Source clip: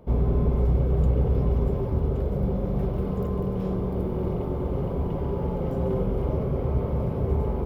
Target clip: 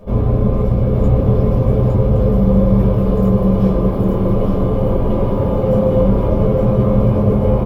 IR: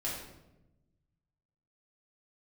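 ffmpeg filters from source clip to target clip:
-filter_complex "[0:a]asplit=2[link_01][link_02];[link_02]alimiter=limit=-21.5dB:level=0:latency=1,volume=1dB[link_03];[link_01][link_03]amix=inputs=2:normalize=0,aecho=1:1:862:0.668[link_04];[1:a]atrim=start_sample=2205,atrim=end_sample=3087,asetrate=79380,aresample=44100[link_05];[link_04][link_05]afir=irnorm=-1:irlink=0,volume=8dB"

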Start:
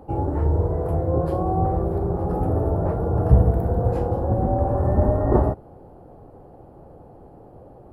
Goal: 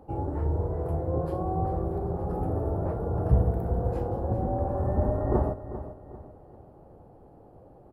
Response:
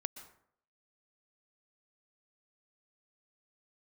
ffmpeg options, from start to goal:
-af "aecho=1:1:395|790|1185|1580:0.237|0.0877|0.0325|0.012,volume=-7dB"

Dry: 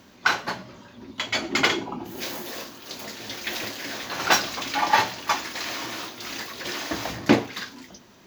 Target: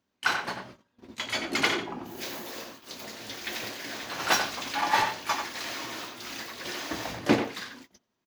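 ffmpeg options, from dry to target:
ffmpeg -i in.wav -filter_complex "[0:a]asplit=2[link_01][link_02];[link_02]adelay=90,highpass=300,lowpass=3400,asoftclip=type=hard:threshold=-12dB,volume=-6dB[link_03];[link_01][link_03]amix=inputs=2:normalize=0,asplit=3[link_04][link_05][link_06];[link_05]asetrate=52444,aresample=44100,atempo=0.840896,volume=-17dB[link_07];[link_06]asetrate=88200,aresample=44100,atempo=0.5,volume=-14dB[link_08];[link_04][link_07][link_08]amix=inputs=3:normalize=0,agate=range=-23dB:threshold=-41dB:ratio=16:detection=peak,volume=-5dB" out.wav

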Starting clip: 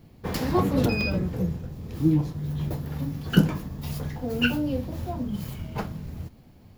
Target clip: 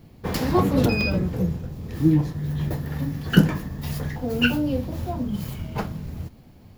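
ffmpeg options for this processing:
ffmpeg -i in.wav -filter_complex "[0:a]asettb=1/sr,asplit=3[link_01][link_02][link_03];[link_01]atrim=end=1.884[link_04];[link_02]atrim=start=1.88:end=4.16,asetpts=PTS-STARTPTS,afade=type=in:duration=0.004:curve=qsin,afade=type=out:start_time=2.276:duration=0.004:curve=qsin,equalizer=frequency=1800:width=6.3:gain=9[link_05];[link_03]atrim=start=4.156[link_06];[link_04][link_05]acrossfade=duration=0.004:curve1=hsin:curve2=qsin[link_07];[link_07][link_06]acrossfade=duration=0.004:curve1=qsin:curve2=hsin,volume=3dB" out.wav

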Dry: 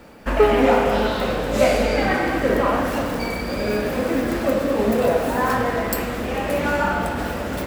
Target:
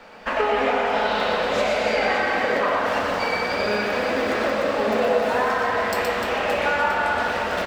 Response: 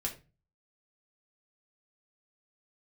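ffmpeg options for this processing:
-filter_complex "[0:a]acrossover=split=520 6000:gain=0.178 1 0.126[link_01][link_02][link_03];[link_01][link_02][link_03]amix=inputs=3:normalize=0,acompressor=threshold=-24dB:ratio=6,aecho=1:1:120|300|570|975|1582:0.631|0.398|0.251|0.158|0.1,asplit=2[link_04][link_05];[1:a]atrim=start_sample=2205,asetrate=48510,aresample=44100[link_06];[link_05][link_06]afir=irnorm=-1:irlink=0,volume=-3dB[link_07];[link_04][link_07]amix=inputs=2:normalize=0"

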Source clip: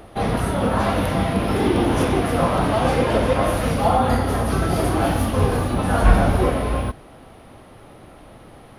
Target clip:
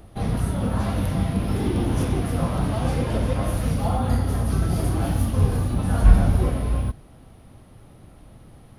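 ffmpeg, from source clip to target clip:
ffmpeg -i in.wav -af "bass=frequency=250:gain=12,treble=frequency=4000:gain=7,volume=-10.5dB" out.wav

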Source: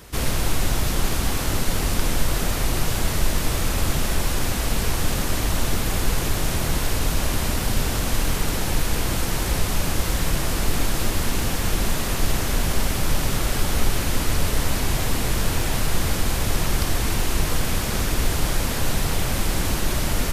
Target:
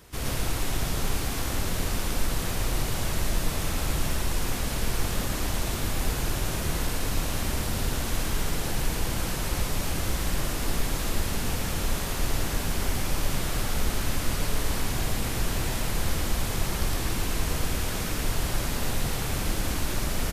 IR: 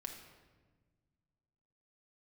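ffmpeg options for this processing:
-af "aecho=1:1:49.56|110.8:0.316|0.891,volume=-8dB"

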